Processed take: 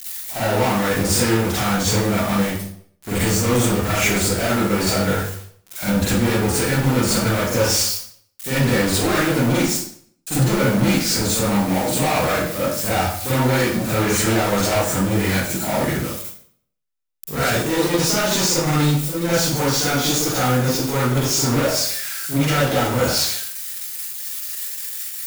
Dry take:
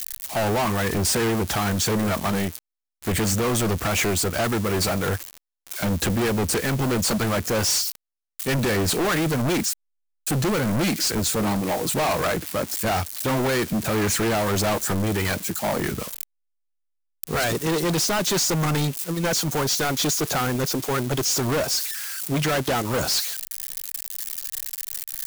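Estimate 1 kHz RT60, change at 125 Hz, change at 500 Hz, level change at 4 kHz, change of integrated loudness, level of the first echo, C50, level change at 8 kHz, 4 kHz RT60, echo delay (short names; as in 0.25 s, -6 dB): 0.60 s, +5.0 dB, +4.0 dB, +3.5 dB, +4.0 dB, none, -3.5 dB, +3.0 dB, 0.50 s, none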